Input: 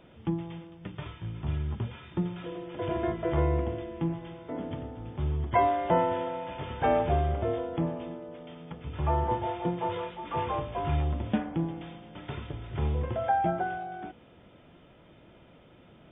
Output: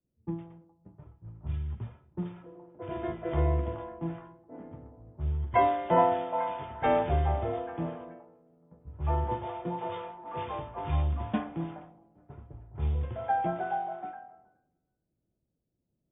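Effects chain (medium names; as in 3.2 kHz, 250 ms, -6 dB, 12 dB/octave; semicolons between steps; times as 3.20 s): repeats whose band climbs or falls 424 ms, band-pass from 830 Hz, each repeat 0.7 oct, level -3 dB; level-controlled noise filter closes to 310 Hz, open at -23 dBFS; three bands expanded up and down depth 70%; trim -4.5 dB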